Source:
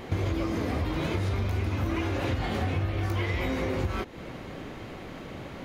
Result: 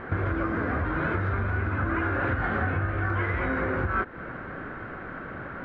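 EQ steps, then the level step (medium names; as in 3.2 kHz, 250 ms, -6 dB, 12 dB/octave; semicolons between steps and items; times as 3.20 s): resonant low-pass 1.5 kHz, resonance Q 6.3; peaking EQ 860 Hz -2.5 dB 0.26 oct; 0.0 dB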